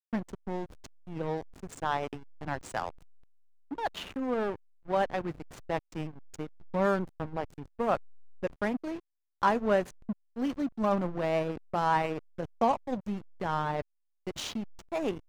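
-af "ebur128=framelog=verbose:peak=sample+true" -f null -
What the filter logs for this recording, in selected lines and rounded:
Integrated loudness:
  I:         -32.8 LUFS
  Threshold: -43.2 LUFS
Loudness range:
  LRA:         6.3 LU
  Threshold: -52.9 LUFS
  LRA low:   -37.0 LUFS
  LRA high:  -30.7 LUFS
Sample peak:
  Peak:      -11.9 dBFS
True peak:
  Peak:      -11.8 dBFS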